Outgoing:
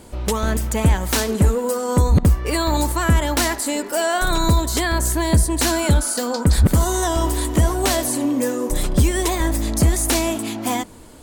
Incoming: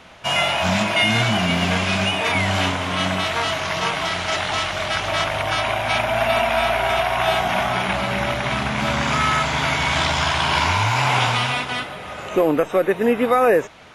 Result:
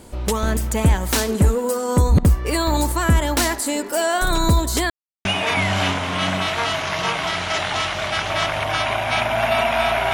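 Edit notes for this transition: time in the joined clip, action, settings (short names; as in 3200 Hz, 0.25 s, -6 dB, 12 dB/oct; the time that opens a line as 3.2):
outgoing
4.9–5.25 mute
5.25 switch to incoming from 2.03 s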